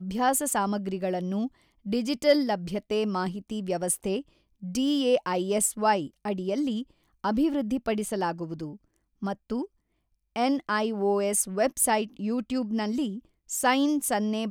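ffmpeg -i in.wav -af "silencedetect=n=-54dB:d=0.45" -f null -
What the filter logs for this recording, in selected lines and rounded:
silence_start: 9.66
silence_end: 10.36 | silence_duration: 0.70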